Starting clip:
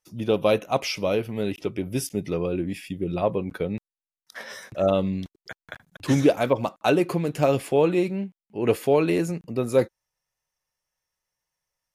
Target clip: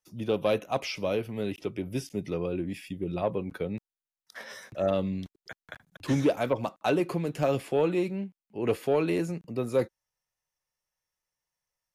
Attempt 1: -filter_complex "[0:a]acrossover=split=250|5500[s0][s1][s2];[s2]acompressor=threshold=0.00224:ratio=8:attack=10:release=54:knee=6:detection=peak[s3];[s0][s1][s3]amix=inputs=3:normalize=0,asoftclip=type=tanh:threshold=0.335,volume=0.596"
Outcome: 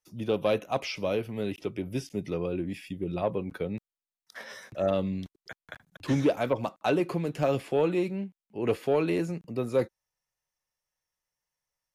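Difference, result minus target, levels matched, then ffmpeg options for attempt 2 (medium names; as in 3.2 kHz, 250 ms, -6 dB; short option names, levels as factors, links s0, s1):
compression: peak gain reduction +5.5 dB
-filter_complex "[0:a]acrossover=split=250|5500[s0][s1][s2];[s2]acompressor=threshold=0.00473:ratio=8:attack=10:release=54:knee=6:detection=peak[s3];[s0][s1][s3]amix=inputs=3:normalize=0,asoftclip=type=tanh:threshold=0.335,volume=0.596"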